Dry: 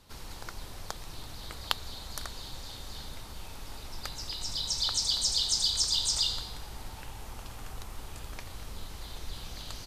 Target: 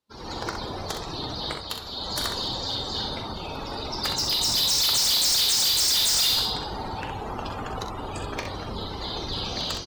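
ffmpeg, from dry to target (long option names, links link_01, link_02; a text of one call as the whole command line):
ffmpeg -i in.wav -af "highpass=frequency=200:poles=1,afftdn=noise_reduction=29:noise_floor=-49,equalizer=frequency=370:width=0.93:gain=3.5,dynaudnorm=framelen=150:gausssize=3:maxgain=12.5dB,asoftclip=type=hard:threshold=-25.5dB,aecho=1:1:42|64:0.282|0.422,volume=4dB" out.wav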